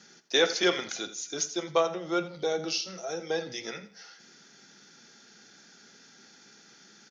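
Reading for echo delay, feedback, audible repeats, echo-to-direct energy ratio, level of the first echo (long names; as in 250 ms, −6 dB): 84 ms, 28%, 2, −14.0 dB, −14.5 dB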